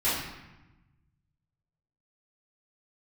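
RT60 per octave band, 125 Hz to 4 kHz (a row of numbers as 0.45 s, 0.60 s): 2.1 s, 1.5 s, 1.0 s, 1.1 s, 1.0 s, 0.75 s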